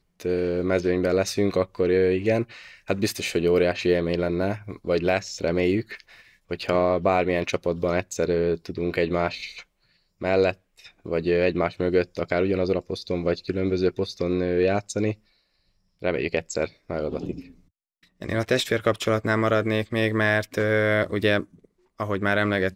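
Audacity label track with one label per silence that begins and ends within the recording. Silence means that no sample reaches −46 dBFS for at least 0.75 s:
15.150000	16.020000	silence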